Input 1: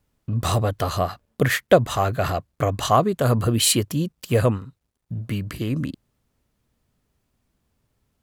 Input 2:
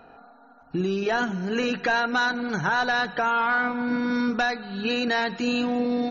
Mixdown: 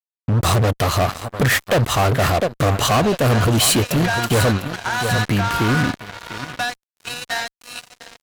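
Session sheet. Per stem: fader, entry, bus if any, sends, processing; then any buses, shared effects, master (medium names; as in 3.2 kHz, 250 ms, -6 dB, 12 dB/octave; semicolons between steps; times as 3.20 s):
0.0 dB, 0.00 s, no send, echo send -13.5 dB, none
-8.0 dB, 2.20 s, no send, echo send -9 dB, steep high-pass 520 Hz 96 dB/octave; treble shelf 3.5 kHz +6.5 dB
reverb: none
echo: feedback delay 700 ms, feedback 32%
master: fuzz box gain 25 dB, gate -34 dBFS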